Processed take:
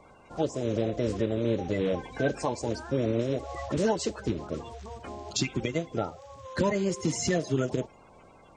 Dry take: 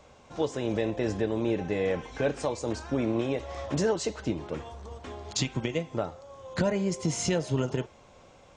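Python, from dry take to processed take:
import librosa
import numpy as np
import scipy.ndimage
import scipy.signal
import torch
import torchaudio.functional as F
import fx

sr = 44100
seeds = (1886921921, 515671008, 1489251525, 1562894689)

y = fx.spec_quant(x, sr, step_db=30)
y = F.gain(torch.from_numpy(y), 1.0).numpy()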